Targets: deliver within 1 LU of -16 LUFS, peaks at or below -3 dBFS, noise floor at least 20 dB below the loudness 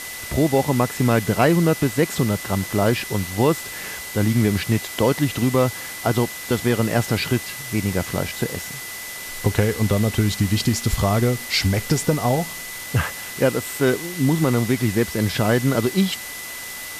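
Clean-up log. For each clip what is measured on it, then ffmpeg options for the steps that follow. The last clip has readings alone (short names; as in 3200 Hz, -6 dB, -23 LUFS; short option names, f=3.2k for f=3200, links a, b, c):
steady tone 2000 Hz; tone level -35 dBFS; noise floor -33 dBFS; noise floor target -42 dBFS; loudness -21.5 LUFS; peak -5.0 dBFS; loudness target -16.0 LUFS
-> -af "bandreject=f=2k:w=30"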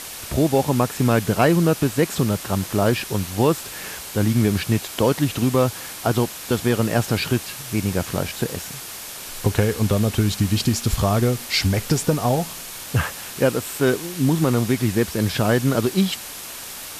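steady tone none; noise floor -35 dBFS; noise floor target -42 dBFS
-> -af "afftdn=nr=7:nf=-35"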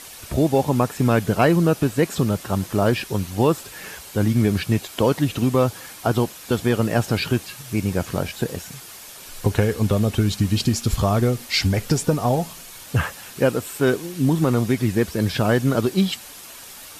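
noise floor -41 dBFS; noise floor target -42 dBFS
-> -af "afftdn=nr=6:nf=-41"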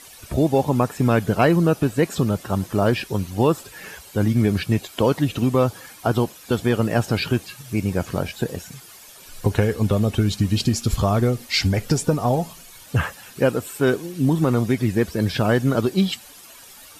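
noise floor -45 dBFS; loudness -21.5 LUFS; peak -5.5 dBFS; loudness target -16.0 LUFS
-> -af "volume=5.5dB,alimiter=limit=-3dB:level=0:latency=1"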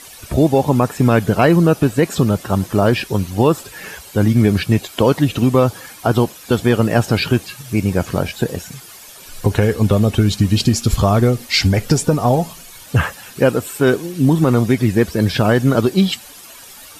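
loudness -16.5 LUFS; peak -3.0 dBFS; noise floor -39 dBFS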